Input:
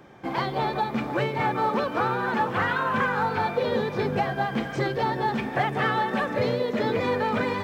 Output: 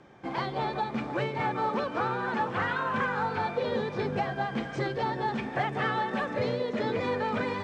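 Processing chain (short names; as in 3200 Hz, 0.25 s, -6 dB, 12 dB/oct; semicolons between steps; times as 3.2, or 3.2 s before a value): LPF 8600 Hz 24 dB/oct; gain -4.5 dB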